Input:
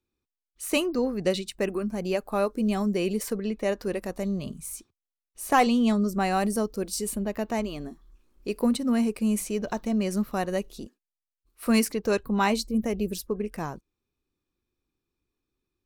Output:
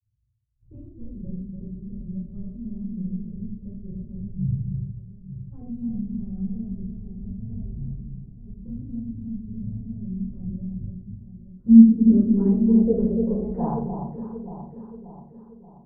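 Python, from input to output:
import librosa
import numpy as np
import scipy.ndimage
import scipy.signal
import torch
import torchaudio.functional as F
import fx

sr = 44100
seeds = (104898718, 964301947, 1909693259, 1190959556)

p1 = scipy.ndimage.median_filter(x, 3, mode='constant')
p2 = scipy.signal.sosfilt(scipy.signal.butter(2, 58.0, 'highpass', fs=sr, output='sos'), p1)
p3 = fx.riaa(p2, sr, side='playback')
p4 = fx.notch(p3, sr, hz=780.0, q=12.0)
p5 = np.clip(p4, -10.0 ** (-19.0 / 20.0), 10.0 ** (-19.0 / 20.0))
p6 = p4 + (p5 * 10.0 ** (-7.0 / 20.0))
p7 = fx.filter_sweep_lowpass(p6, sr, from_hz=110.0, to_hz=1000.0, start_s=10.98, end_s=13.93, q=6.6)
p8 = fx.granulator(p7, sr, seeds[0], grain_ms=100.0, per_s=20.0, spray_ms=35.0, spread_st=0)
p9 = p8 + fx.echo_alternate(p8, sr, ms=291, hz=1100.0, feedback_pct=71, wet_db=-6, dry=0)
p10 = fx.room_shoebox(p9, sr, seeds[1], volume_m3=380.0, walls='furnished', distance_m=4.6)
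y = p10 * 10.0 ** (-15.5 / 20.0)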